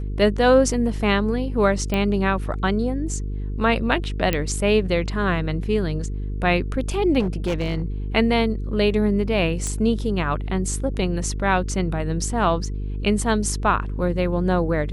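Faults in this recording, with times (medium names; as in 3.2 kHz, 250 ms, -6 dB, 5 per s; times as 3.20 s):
buzz 50 Hz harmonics 9 -27 dBFS
1.94 s: pop -11 dBFS
4.33 s: pop -7 dBFS
7.19–7.82 s: clipped -18.5 dBFS
9.67 s: pop -14 dBFS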